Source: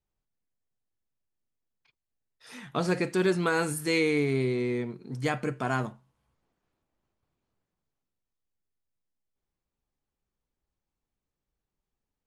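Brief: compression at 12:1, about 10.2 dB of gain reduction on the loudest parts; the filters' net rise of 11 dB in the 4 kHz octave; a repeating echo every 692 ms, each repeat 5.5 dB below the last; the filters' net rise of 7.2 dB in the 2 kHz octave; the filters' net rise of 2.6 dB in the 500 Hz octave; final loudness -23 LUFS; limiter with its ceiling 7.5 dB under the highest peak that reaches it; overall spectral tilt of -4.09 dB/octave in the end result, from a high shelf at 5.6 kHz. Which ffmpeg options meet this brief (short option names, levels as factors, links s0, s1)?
-af "equalizer=f=500:t=o:g=3,equalizer=f=2000:t=o:g=6,equalizer=f=4000:t=o:g=9,highshelf=f=5600:g=5.5,acompressor=threshold=0.0447:ratio=12,alimiter=limit=0.0891:level=0:latency=1,aecho=1:1:692|1384|2076|2768|3460|4152|4844:0.531|0.281|0.149|0.079|0.0419|0.0222|0.0118,volume=3.16"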